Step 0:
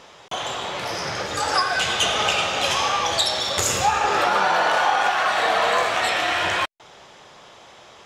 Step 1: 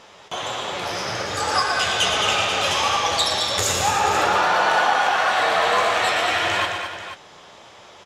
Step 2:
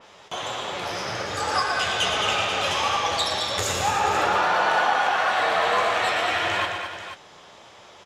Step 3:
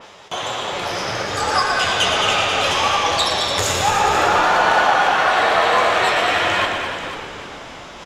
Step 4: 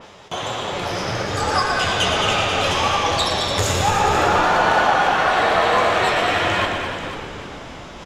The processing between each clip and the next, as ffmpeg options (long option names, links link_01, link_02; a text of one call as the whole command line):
ffmpeg -i in.wav -filter_complex "[0:a]flanger=delay=8.6:depth=3.4:regen=48:speed=1.7:shape=triangular,asplit=2[link_01][link_02];[link_02]aecho=0:1:117|217|312|487:0.398|0.422|0.15|0.266[link_03];[link_01][link_03]amix=inputs=2:normalize=0,volume=3.5dB" out.wav
ffmpeg -i in.wav -af "adynamicequalizer=threshold=0.0251:dfrequency=3900:dqfactor=0.7:tfrequency=3900:tqfactor=0.7:attack=5:release=100:ratio=0.375:range=2:mode=cutabove:tftype=highshelf,volume=-2.5dB" out.wav
ffmpeg -i in.wav -filter_complex "[0:a]areverse,acompressor=mode=upward:threshold=-38dB:ratio=2.5,areverse,asplit=9[link_01][link_02][link_03][link_04][link_05][link_06][link_07][link_08][link_09];[link_02]adelay=299,afreqshift=-91,volume=-12dB[link_10];[link_03]adelay=598,afreqshift=-182,volume=-15.9dB[link_11];[link_04]adelay=897,afreqshift=-273,volume=-19.8dB[link_12];[link_05]adelay=1196,afreqshift=-364,volume=-23.6dB[link_13];[link_06]adelay=1495,afreqshift=-455,volume=-27.5dB[link_14];[link_07]adelay=1794,afreqshift=-546,volume=-31.4dB[link_15];[link_08]adelay=2093,afreqshift=-637,volume=-35.3dB[link_16];[link_09]adelay=2392,afreqshift=-728,volume=-39.1dB[link_17];[link_01][link_10][link_11][link_12][link_13][link_14][link_15][link_16][link_17]amix=inputs=9:normalize=0,volume=5.5dB" out.wav
ffmpeg -i in.wav -af "lowshelf=frequency=340:gain=9,volume=-2.5dB" out.wav